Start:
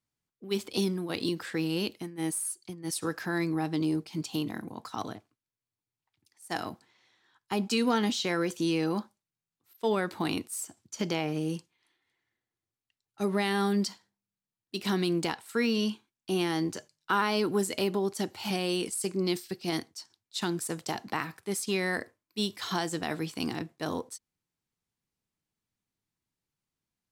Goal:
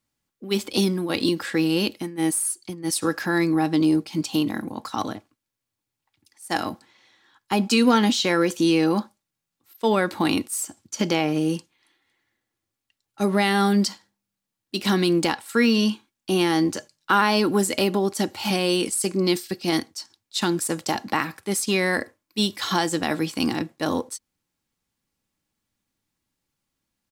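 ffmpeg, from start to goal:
-af "aecho=1:1:3.6:0.3,volume=2.51"

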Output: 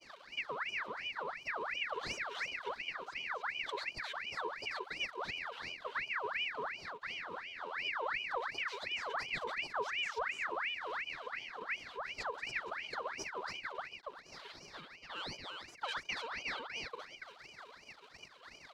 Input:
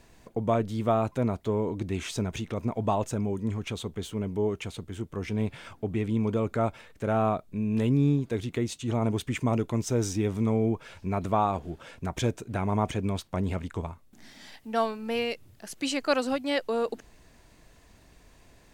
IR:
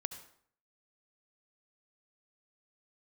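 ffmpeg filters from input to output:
-filter_complex "[0:a]aeval=exprs='val(0)+0.5*0.0237*sgn(val(0))':c=same,asetrate=35002,aresample=44100,atempo=1.25992,aecho=1:1:3.9:0.72,acompressor=threshold=0.0631:ratio=6,asplit=3[s0][s1][s2];[s0]bandpass=f=270:t=q:w=8,volume=1[s3];[s1]bandpass=f=2290:t=q:w=8,volume=0.501[s4];[s2]bandpass=f=3010:t=q:w=8,volume=0.355[s5];[s3][s4][s5]amix=inputs=3:normalize=0,bass=f=250:g=-11,treble=f=4000:g=-4,asoftclip=type=tanh:threshold=0.0224,acrossover=split=240|3000[s6][s7][s8];[s7]acompressor=threshold=0.00282:ratio=3[s9];[s6][s9][s8]amix=inputs=3:normalize=0,agate=range=0.0224:threshold=0.00501:ratio=3:detection=peak,aecho=1:1:284:0.668,aeval=exprs='val(0)*sin(2*PI*1700*n/s+1700*0.6/2.8*sin(2*PI*2.8*n/s))':c=same,volume=2.66"

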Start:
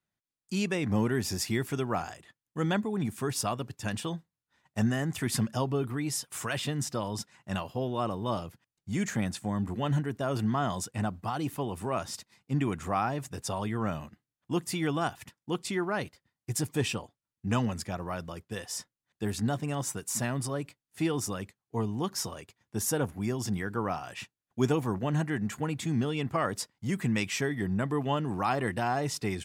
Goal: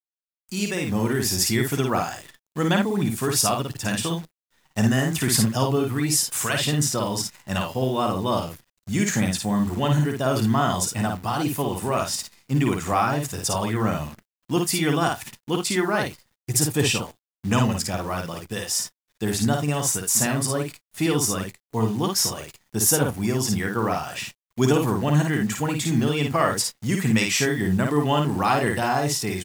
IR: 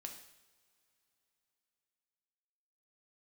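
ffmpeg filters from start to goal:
-filter_complex "[0:a]aemphasis=mode=production:type=50kf,acrossover=split=6900[s0][s1];[s0]dynaudnorm=f=460:g=5:m=2[s2];[s2][s1]amix=inputs=2:normalize=0,aecho=1:1:14|54|80:0.133|0.668|0.133,acrusher=bits=8:dc=4:mix=0:aa=0.000001"

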